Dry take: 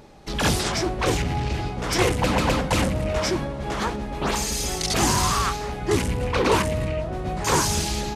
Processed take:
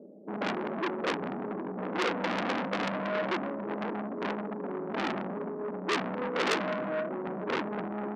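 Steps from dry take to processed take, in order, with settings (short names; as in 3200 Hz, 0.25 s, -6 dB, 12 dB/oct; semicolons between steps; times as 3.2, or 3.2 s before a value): Chebyshev band-pass 190–630 Hz, order 4; low shelf 240 Hz +5 dB; core saturation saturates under 3700 Hz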